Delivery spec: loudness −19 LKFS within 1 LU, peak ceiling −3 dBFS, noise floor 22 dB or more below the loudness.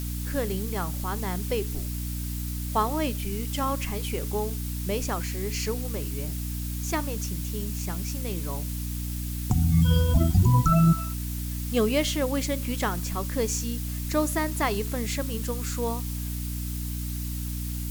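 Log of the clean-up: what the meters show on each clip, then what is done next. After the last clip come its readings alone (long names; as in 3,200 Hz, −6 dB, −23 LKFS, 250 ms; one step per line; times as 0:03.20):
mains hum 60 Hz; hum harmonics up to 300 Hz; level of the hum −29 dBFS; background noise floor −32 dBFS; target noise floor −50 dBFS; integrated loudness −27.5 LKFS; sample peak −10.0 dBFS; target loudness −19.0 LKFS
→ hum removal 60 Hz, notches 5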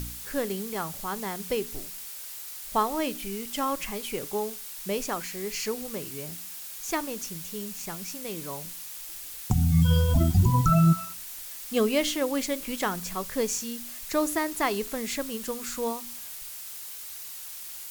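mains hum none found; background noise floor −40 dBFS; target noise floor −51 dBFS
→ broadband denoise 11 dB, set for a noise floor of −40 dBFS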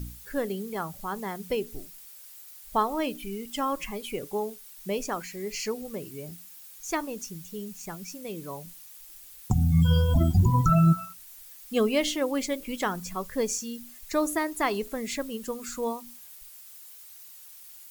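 background noise floor −48 dBFS; target noise floor −51 dBFS
→ broadband denoise 6 dB, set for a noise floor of −48 dBFS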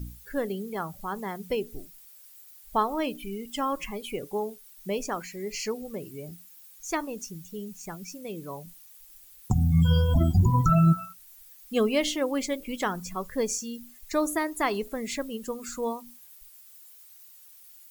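background noise floor −52 dBFS; integrated loudness −28.5 LKFS; sample peak −10.5 dBFS; target loudness −19.0 LKFS
→ level +9.5 dB
brickwall limiter −3 dBFS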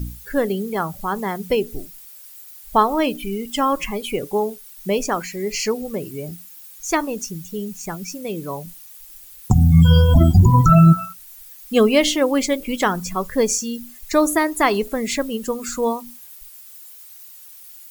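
integrated loudness −19.5 LKFS; sample peak −3.0 dBFS; background noise floor −42 dBFS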